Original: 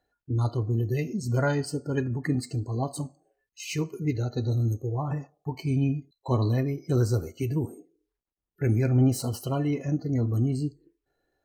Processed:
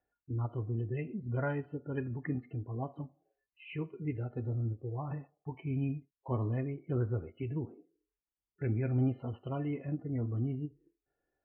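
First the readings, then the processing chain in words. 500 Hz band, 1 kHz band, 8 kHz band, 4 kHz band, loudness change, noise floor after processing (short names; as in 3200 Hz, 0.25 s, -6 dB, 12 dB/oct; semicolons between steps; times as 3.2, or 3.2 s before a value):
-8.5 dB, -8.5 dB, under -40 dB, under -15 dB, -8.5 dB, under -85 dBFS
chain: added harmonics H 3 -44 dB, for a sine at -13 dBFS; steep low-pass 2900 Hz 72 dB/oct; ending taper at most 420 dB/s; gain -8.5 dB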